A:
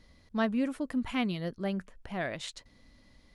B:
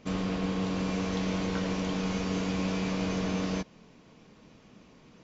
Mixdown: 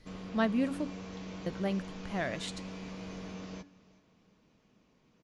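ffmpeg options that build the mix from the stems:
-filter_complex "[0:a]volume=0dB,asplit=3[a][b][c];[a]atrim=end=0.9,asetpts=PTS-STARTPTS,afade=t=out:st=0.896:d=0.004:c=hsin[d];[b]atrim=start=0.9:end=1.46,asetpts=PTS-STARTPTS,volume=0[e];[c]atrim=start=1.46,asetpts=PTS-STARTPTS,afade=t=in:d=0.004:c=hsin[f];[d][e][f]concat=n=3:v=0:a=1[g];[1:a]volume=-12.5dB,asplit=2[h][i];[i]volume=-20.5dB,aecho=0:1:373|746|1119|1492|1865|2238:1|0.4|0.16|0.064|0.0256|0.0102[j];[g][h][j]amix=inputs=3:normalize=0,bandreject=f=284.2:t=h:w=4,bandreject=f=568.4:t=h:w=4,bandreject=f=852.6:t=h:w=4,bandreject=f=1.1368k:t=h:w=4,bandreject=f=1.421k:t=h:w=4,bandreject=f=1.7052k:t=h:w=4,bandreject=f=1.9894k:t=h:w=4,bandreject=f=2.2736k:t=h:w=4,bandreject=f=2.5578k:t=h:w=4,bandreject=f=2.842k:t=h:w=4,bandreject=f=3.1262k:t=h:w=4,bandreject=f=3.4104k:t=h:w=4,bandreject=f=3.6946k:t=h:w=4,bandreject=f=3.9788k:t=h:w=4,bandreject=f=4.263k:t=h:w=4,bandreject=f=4.5472k:t=h:w=4,bandreject=f=4.8314k:t=h:w=4,bandreject=f=5.1156k:t=h:w=4,bandreject=f=5.3998k:t=h:w=4,bandreject=f=5.684k:t=h:w=4,bandreject=f=5.9682k:t=h:w=4,bandreject=f=6.2524k:t=h:w=4,bandreject=f=6.5366k:t=h:w=4,bandreject=f=6.8208k:t=h:w=4,bandreject=f=7.105k:t=h:w=4,bandreject=f=7.3892k:t=h:w=4,bandreject=f=7.6734k:t=h:w=4,bandreject=f=7.9576k:t=h:w=4,bandreject=f=8.2418k:t=h:w=4,bandreject=f=8.526k:t=h:w=4,bandreject=f=8.8102k:t=h:w=4,bandreject=f=9.0944k:t=h:w=4"

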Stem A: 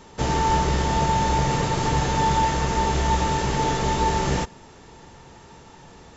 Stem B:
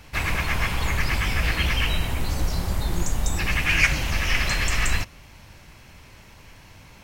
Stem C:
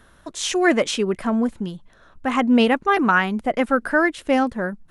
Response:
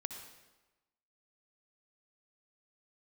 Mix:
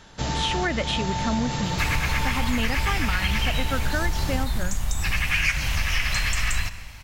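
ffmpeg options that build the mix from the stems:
-filter_complex "[0:a]volume=-2dB[a];[1:a]equalizer=f=370:t=o:w=1.7:g=-11.5,adelay=1650,volume=2.5dB,asplit=2[b][c];[c]volume=-7dB[d];[2:a]highshelf=f=4.2k:t=q:w=1.5:g=-9,volume=-0.5dB[e];[a][e]amix=inputs=2:normalize=0,equalizer=f=400:t=o:w=0.67:g=-8,equalizer=f=1k:t=o:w=0.67:g=-4,equalizer=f=4k:t=o:w=0.67:g=5,alimiter=limit=-12dB:level=0:latency=1:release=344,volume=0dB[f];[3:a]atrim=start_sample=2205[g];[d][g]afir=irnorm=-1:irlink=0[h];[b][f][h]amix=inputs=3:normalize=0,acompressor=threshold=-20dB:ratio=4"

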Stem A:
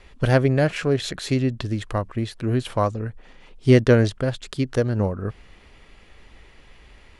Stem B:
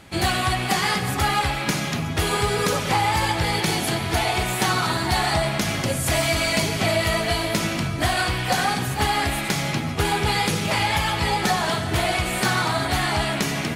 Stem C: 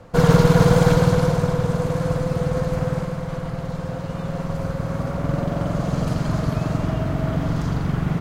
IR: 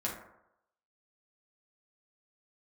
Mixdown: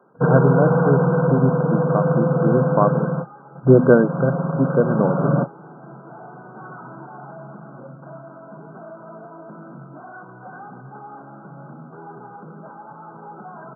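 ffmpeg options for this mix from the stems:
-filter_complex "[0:a]bandreject=f=50:t=h:w=6,bandreject=f=100:t=h:w=6,bandreject=f=150:t=h:w=6,bandreject=f=200:t=h:w=6,bandreject=f=250:t=h:w=6,volume=1dB,asplit=2[a][b];[1:a]asoftclip=type=tanh:threshold=-25.5dB,adelay=1950,volume=-17dB[c];[2:a]asoftclip=type=tanh:threshold=-12.5dB,volume=1.5dB[d];[b]apad=whole_len=361816[e];[d][e]sidechaingate=range=-34dB:threshold=-39dB:ratio=16:detection=peak[f];[a][c][f]amix=inputs=3:normalize=0,afftfilt=real='re*between(b*sr/4096,120,1600)':imag='im*between(b*sr/4096,120,1600)':win_size=4096:overlap=0.75,dynaudnorm=f=260:g=9:m=9dB"

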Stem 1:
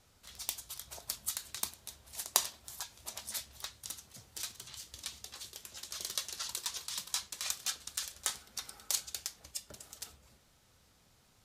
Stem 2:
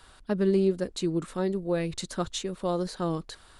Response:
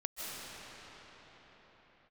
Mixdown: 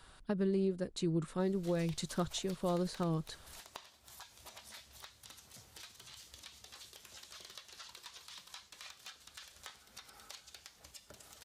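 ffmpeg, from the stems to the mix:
-filter_complex "[0:a]acrossover=split=4100[a][b];[b]acompressor=threshold=-51dB:ratio=4:attack=1:release=60[c];[a][c]amix=inputs=2:normalize=0,lowshelf=f=410:g=-4,acompressor=threshold=-54dB:ratio=3,adelay=1400,volume=2.5dB[d];[1:a]equalizer=f=150:t=o:w=0.42:g=7.5,volume=-5dB[e];[d][e]amix=inputs=2:normalize=0,alimiter=level_in=0.5dB:limit=-24dB:level=0:latency=1:release=368,volume=-0.5dB"

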